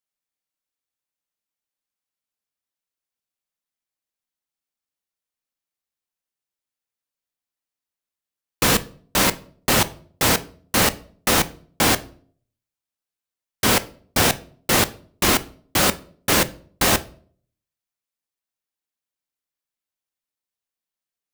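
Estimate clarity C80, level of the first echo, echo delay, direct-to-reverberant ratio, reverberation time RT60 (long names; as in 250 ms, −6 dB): 24.5 dB, no echo audible, no echo audible, 11.5 dB, 0.50 s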